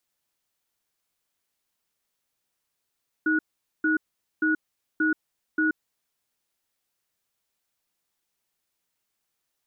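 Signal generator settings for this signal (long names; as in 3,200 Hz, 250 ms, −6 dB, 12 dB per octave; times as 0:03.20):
tone pair in a cadence 313 Hz, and 1,460 Hz, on 0.13 s, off 0.45 s, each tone −22.5 dBFS 2.55 s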